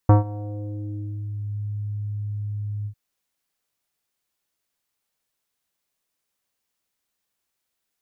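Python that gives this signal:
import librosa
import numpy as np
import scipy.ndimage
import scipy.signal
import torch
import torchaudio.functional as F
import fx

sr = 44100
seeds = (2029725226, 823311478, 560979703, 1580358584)

y = fx.sub_voice(sr, note=44, wave='square', cutoff_hz=140.0, q=1.4, env_oct=3.0, env_s=1.46, attack_ms=3.6, decay_s=0.14, sustain_db=-21.0, release_s=0.08, note_s=2.77, slope=24)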